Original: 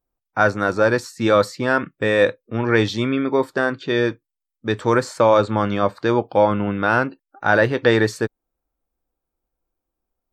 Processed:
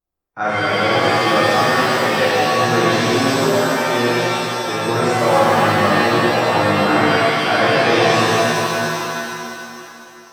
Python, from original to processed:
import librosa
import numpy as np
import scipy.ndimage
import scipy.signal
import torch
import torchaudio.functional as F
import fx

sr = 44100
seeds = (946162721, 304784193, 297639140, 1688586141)

y = fx.rev_shimmer(x, sr, seeds[0], rt60_s=2.7, semitones=7, shimmer_db=-2, drr_db=-10.5)
y = F.gain(torch.from_numpy(y), -10.0).numpy()